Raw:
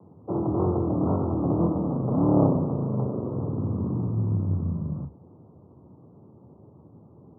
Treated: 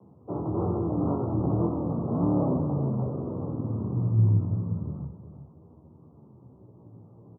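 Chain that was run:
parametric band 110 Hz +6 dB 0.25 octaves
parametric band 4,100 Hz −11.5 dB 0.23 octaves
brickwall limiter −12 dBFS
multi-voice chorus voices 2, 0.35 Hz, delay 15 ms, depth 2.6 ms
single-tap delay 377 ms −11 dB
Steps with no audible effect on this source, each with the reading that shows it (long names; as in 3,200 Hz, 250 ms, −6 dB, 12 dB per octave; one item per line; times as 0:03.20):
parametric band 4,100 Hz: nothing at its input above 850 Hz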